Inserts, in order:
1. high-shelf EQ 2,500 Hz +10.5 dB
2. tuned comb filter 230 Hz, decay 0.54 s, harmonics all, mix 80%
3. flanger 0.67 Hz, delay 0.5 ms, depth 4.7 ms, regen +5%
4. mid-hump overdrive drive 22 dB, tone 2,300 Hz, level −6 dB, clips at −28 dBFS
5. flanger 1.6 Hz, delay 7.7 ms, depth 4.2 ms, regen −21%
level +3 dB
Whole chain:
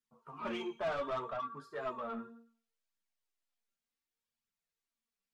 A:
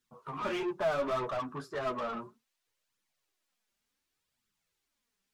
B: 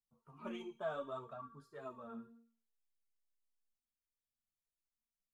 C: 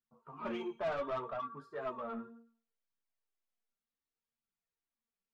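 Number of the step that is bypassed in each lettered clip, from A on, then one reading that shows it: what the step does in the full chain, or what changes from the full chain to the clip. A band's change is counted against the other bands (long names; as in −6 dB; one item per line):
2, 125 Hz band +3.5 dB
4, 125 Hz band +5.0 dB
1, 4 kHz band −4.5 dB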